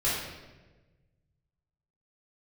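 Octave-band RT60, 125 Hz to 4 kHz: 2.3, 1.5, 1.4, 1.1, 1.1, 0.90 s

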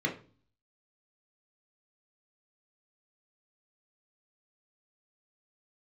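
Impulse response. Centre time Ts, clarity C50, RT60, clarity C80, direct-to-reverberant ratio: 16 ms, 11.0 dB, 0.40 s, 17.0 dB, 0.0 dB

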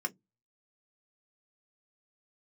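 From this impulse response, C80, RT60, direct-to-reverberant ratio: 40.5 dB, 0.15 s, 4.0 dB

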